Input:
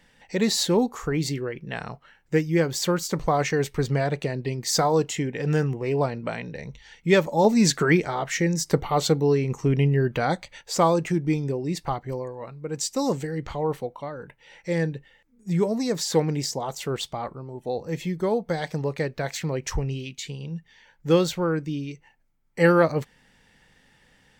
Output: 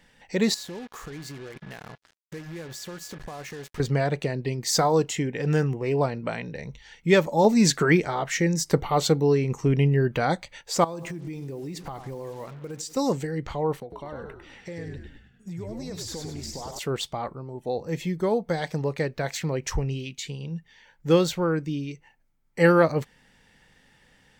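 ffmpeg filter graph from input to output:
-filter_complex "[0:a]asettb=1/sr,asplit=3[a][b][c];[a]atrim=end=0.544[d];[b]atrim=start=0.54:end=3.8,asetpts=PTS-STARTPTS,afade=t=in:d=0.004:c=qsin,afade=t=out:st=3.256:d=0.004:c=qsin,acompressor=threshold=-38dB:ratio=4:attack=3.2:release=140:knee=1:detection=peak,aeval=exprs='val(0)+0.00224*sin(2*PI*1700*n/s)':c=same,acrusher=bits=6:mix=0:aa=0.5[e];[c]atrim=start=3.796[f];[d][e]acrossfade=d=0.004:c1=hsin:c2=qsin[g];[g][f]acrossfade=d=0.004:c1=qsin:c2=hsin,asettb=1/sr,asplit=3[h][i][j];[h]atrim=end=10.844[k];[i]atrim=start=10.84:end=12.97,asetpts=PTS-STARTPTS,afade=t=in:d=0.004:c=qsin,afade=t=out:st=2.126:d=0.004:c=qsin,asplit=2[l][m];[m]adelay=89,lowpass=f=1.6k:p=1,volume=-16.5dB,asplit=2[n][o];[o]adelay=89,lowpass=f=1.6k:p=1,volume=0.51,asplit=2[p][q];[q]adelay=89,lowpass=f=1.6k:p=1,volume=0.51,asplit=2[r][s];[s]adelay=89,lowpass=f=1.6k:p=1,volume=0.51,asplit=2[t][u];[u]adelay=89,lowpass=f=1.6k:p=1,volume=0.51[v];[l][n][p][r][t][v]amix=inputs=6:normalize=0,atrim=end_sample=93933,acrusher=bits=7:mix=0:aa=0.5,acompressor=threshold=-31dB:ratio=10:attack=3.2:release=140:knee=1:detection=peak[w];[j]atrim=start=12.966[x];[k][w]acrossfade=d=0.004:c1=hsin:c2=qsin[y];[y][x]acrossfade=d=0.004:c1=qsin:c2=hsin,asettb=1/sr,asplit=3[z][aa][ab];[z]atrim=end=13.804[ac];[aa]atrim=start=13.8:end=16.79,asetpts=PTS-STARTPTS,afade=t=in:d=0.004:c=qsin,afade=t=out:st=2.986:d=0.004:c=qsin,acompressor=threshold=-33dB:ratio=10:attack=3.2:release=140:knee=1:detection=peak,agate=range=-33dB:threshold=-55dB:ratio=3:release=100:detection=peak,asplit=7[ad][ae][af][ag][ah][ai][aj];[ae]adelay=100,afreqshift=-69,volume=-4.5dB[ak];[af]adelay=200,afreqshift=-138,volume=-10.7dB[al];[ag]adelay=300,afreqshift=-207,volume=-16.9dB[am];[ah]adelay=400,afreqshift=-276,volume=-23.1dB[an];[ai]adelay=500,afreqshift=-345,volume=-29.3dB[ao];[aj]adelay=600,afreqshift=-414,volume=-35.5dB[ap];[ad][ak][al][am][an][ao][ap]amix=inputs=7:normalize=0,atrim=end_sample=131859[aq];[ab]atrim=start=16.786[ar];[ac][aq]acrossfade=d=0.004:c1=hsin:c2=qsin[as];[as][ar]acrossfade=d=0.004:c1=qsin:c2=hsin"

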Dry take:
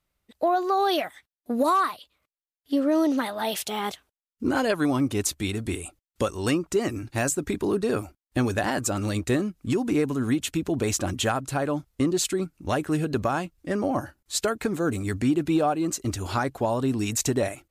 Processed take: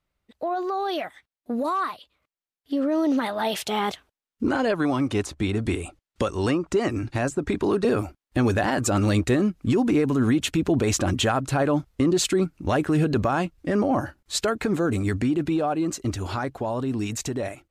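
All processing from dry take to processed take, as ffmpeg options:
-filter_complex "[0:a]asettb=1/sr,asplit=3[a][b][c];[a]atrim=end=4.474[d];[b]atrim=start=4.47:end=7.85,asetpts=PTS-STARTPTS,afade=t=in:d=0.004:c=qsin,afade=t=out:st=3.376:d=0.004:c=qsin,lowpass=10k,acrossover=split=570|1400[e][f][g];[e]acompressor=threshold=-29dB:ratio=4[h];[f]acompressor=threshold=-33dB:ratio=4[i];[g]acompressor=threshold=-38dB:ratio=4[j];[h][i][j]amix=inputs=3:normalize=0[k];[c]atrim=start=7.846[l];[d][k]acrossfade=d=0.004:c1=hsin:c2=qsin[m];[m][l]acrossfade=d=0.004:c1=qsin:c2=hsin,highshelf=f=6.7k:g=-11.5,alimiter=limit=-20dB:level=0:latency=1:release=37,dynaudnorm=f=750:g=9:m=7dB"

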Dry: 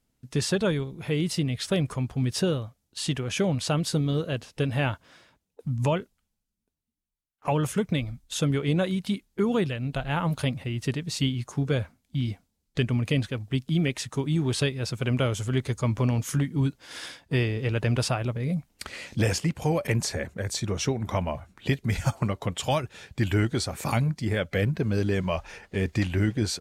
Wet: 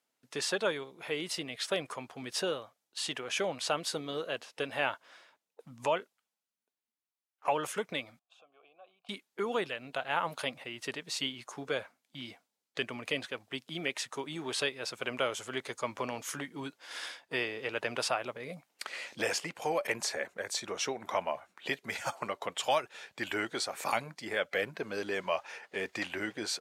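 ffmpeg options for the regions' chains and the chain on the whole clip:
-filter_complex "[0:a]asettb=1/sr,asplit=3[a][b][c];[a]atrim=end=8.194[d];[b]atrim=start=8.19:end=9.09,asetpts=PTS-STARTPTS,afade=t=in:d=0.004:c=qsin,afade=t=out:st=0.896:d=0.004:c=qsin,bandreject=f=2k:w=5.9,acompressor=threshold=-35dB:ratio=8:attack=3.2:release=140:knee=1:detection=peak,asplit=3[e][f][g];[e]bandpass=f=730:t=q:w=8,volume=0dB[h];[f]bandpass=f=1.09k:t=q:w=8,volume=-6dB[i];[g]bandpass=f=2.44k:t=q:w=8,volume=-9dB[j];[h][i][j]amix=inputs=3:normalize=0[k];[c]atrim=start=9.086[l];[d][k]acrossfade=d=0.004:c1=hsin:c2=qsin[m];[m][l]acrossfade=d=0.004:c1=qsin:c2=hsin,highpass=580,highshelf=f=4.2k:g=-5.5"

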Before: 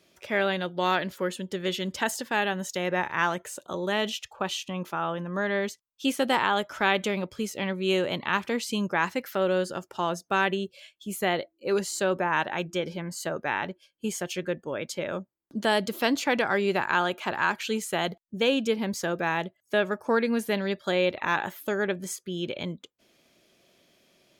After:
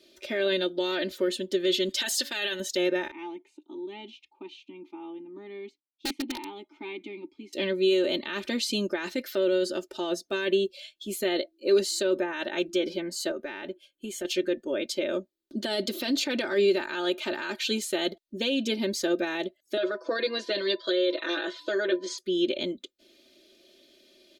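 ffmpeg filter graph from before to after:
-filter_complex "[0:a]asettb=1/sr,asplit=3[a][b][c];[a]atrim=end=1.894[d];[b]atrim=start=1.89:end=2.6,asetpts=PTS-STARTPTS,afade=t=in:d=0.004:c=qsin,afade=t=out:st=0.706:d=0.004:c=qsin,tiltshelf=f=940:g=-8,bandreject=f=281.5:t=h:w=4,bandreject=f=563:t=h:w=4,bandreject=f=844.5:t=h:w=4[e];[c]atrim=start=2.596[f];[d][e]acrossfade=d=0.004:c1=hsin:c2=qsin[g];[g][f]acrossfade=d=0.004:c1=qsin:c2=hsin,asettb=1/sr,asplit=3[h][i][j];[h]atrim=end=3.114[k];[i]atrim=start=3.11:end=7.53,asetpts=PTS-STARTPTS,afade=t=in:d=0.004:c=qsin,afade=t=out:st=4.416:d=0.004:c=qsin,asplit=3[l][m][n];[l]bandpass=f=300:t=q:w=8,volume=0dB[o];[m]bandpass=f=870:t=q:w=8,volume=-6dB[p];[n]bandpass=f=2.24k:t=q:w=8,volume=-9dB[q];[o][p][q]amix=inputs=3:normalize=0,bandreject=f=50:t=h:w=6,bandreject=f=100:t=h:w=6,bandreject=f=150:t=h:w=6,aeval=exprs='(mod(23.7*val(0)+1,2)-1)/23.7':c=same[r];[j]atrim=start=7.526[s];[k][r]acrossfade=d=0.004:c1=hsin:c2=qsin[t];[t][s]acrossfade=d=0.004:c1=qsin:c2=hsin,asettb=1/sr,asplit=3[u][v][w];[u]atrim=end=13.314[x];[v]atrim=start=13.31:end=14.25,asetpts=PTS-STARTPTS,afade=t=in:d=0.004:c=qsin,afade=t=out:st=0.936:d=0.004:c=qsin,equalizer=f=4.9k:w=3.1:g=-11.5,acompressor=threshold=-35dB:ratio=2.5:attack=3.2:release=140:knee=1:detection=peak[y];[w]atrim=start=14.246[z];[x][y]acrossfade=d=0.004:c1=hsin:c2=qsin[aa];[aa][z]acrossfade=d=0.004:c1=qsin:c2=hsin,asettb=1/sr,asplit=3[ab][ac][ad];[ab]atrim=end=19.774[ae];[ac]atrim=start=19.77:end=22.18,asetpts=PTS-STARTPTS,afade=t=in:d=0.004:c=qsin,afade=t=out:st=2.406:d=0.004:c=qsin,aecho=1:1:6.1:0.92,atrim=end_sample=106281,aeval=exprs='val(0)+0.00794*sin(2*PI*1000*n/s)':c=same,highpass=f=300:w=0.5412,highpass=f=300:w=1.3066,equalizer=f=540:t=q:w=4:g=4,equalizer=f=870:t=q:w=4:g=-9,equalizer=f=1.4k:t=q:w=4:g=4,equalizer=f=2.4k:t=q:w=4:g=-4,equalizer=f=4.3k:t=q:w=4:g=4,lowpass=f=5.6k:w=0.5412,lowpass=f=5.6k:w=1.3066[af];[ad]atrim=start=22.176[ag];[ae][af]acrossfade=d=0.004:c1=hsin:c2=qsin[ah];[ah][ag]acrossfade=d=0.004:c1=qsin:c2=hsin,aecho=1:1:3.3:0.86,alimiter=limit=-19dB:level=0:latency=1:release=17,equalizer=f=100:t=o:w=0.67:g=-10,equalizer=f=400:t=o:w=0.67:g=10,equalizer=f=1k:t=o:w=0.67:g=-10,equalizer=f=4k:t=o:w=0.67:g=10,volume=-2.5dB"

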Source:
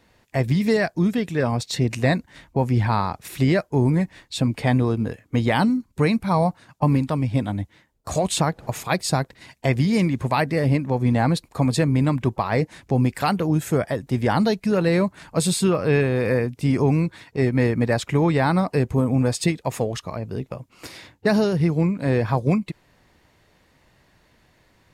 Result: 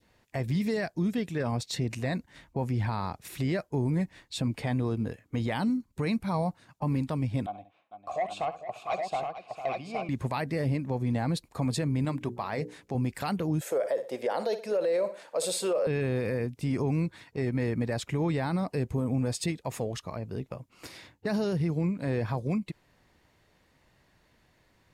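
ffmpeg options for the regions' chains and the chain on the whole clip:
-filter_complex "[0:a]asettb=1/sr,asplit=3[a][b][c];[a]atrim=end=7.464[d];[b]atrim=start=7.46:end=10.09,asetpts=PTS-STARTPTS,afade=t=in:d=0.004:c=qsin,afade=t=out:st=2.626:d=0.004:c=qsin,asplit=3[e][f][g];[e]bandpass=f=730:t=q:w=8,volume=0dB[h];[f]bandpass=f=1.09k:t=q:w=8,volume=-6dB[i];[g]bandpass=f=2.44k:t=q:w=8,volume=-9dB[j];[h][i][j]amix=inputs=3:normalize=0,aeval=exprs='0.141*sin(PI/2*1.78*val(0)/0.141)':c=same,aecho=1:1:68|451|817:0.224|0.266|0.631,atrim=end_sample=115983[k];[c]atrim=start=10.086[l];[d][k]acrossfade=d=0.004:c1=hsin:c2=qsin[m];[m][l]acrossfade=d=0.004:c1=qsin:c2=hsin,asettb=1/sr,asplit=3[n][o][p];[n]atrim=end=12.054[q];[o]atrim=start=12.05:end=12.95,asetpts=PTS-STARTPTS,afade=t=in:d=0.004:c=qsin,afade=t=out:st=0.896:d=0.004:c=qsin,lowshelf=f=110:g=-11.5,bandreject=f=60:t=h:w=6,bandreject=f=120:t=h:w=6,bandreject=f=180:t=h:w=6,bandreject=f=240:t=h:w=6,bandreject=f=300:t=h:w=6,bandreject=f=360:t=h:w=6,bandreject=f=420:t=h:w=6,bandreject=f=480:t=h:w=6,bandreject=f=540:t=h:w=6[r];[p]atrim=start=12.946[s];[q][r]acrossfade=d=0.004:c1=hsin:c2=qsin[t];[t][s]acrossfade=d=0.004:c1=qsin:c2=hsin,asettb=1/sr,asplit=3[u][v][w];[u]atrim=end=13.614[x];[v]atrim=start=13.61:end=15.87,asetpts=PTS-STARTPTS,afade=t=in:d=0.004:c=qsin,afade=t=out:st=2.256:d=0.004:c=qsin,highpass=f=530:t=q:w=5.2,aecho=1:1:60|120|180:0.158|0.0555|0.0194,atrim=end_sample=99666[y];[w]atrim=start=15.866[z];[x][y]acrossfade=d=0.004:c1=hsin:c2=qsin[aa];[aa][z]acrossfade=d=0.004:c1=qsin:c2=hsin,adynamicequalizer=threshold=0.02:dfrequency=1200:dqfactor=0.8:tfrequency=1200:tqfactor=0.8:attack=5:release=100:ratio=0.375:range=2:mode=cutabove:tftype=bell,alimiter=limit=-14.5dB:level=0:latency=1:release=28,volume=-6.5dB"

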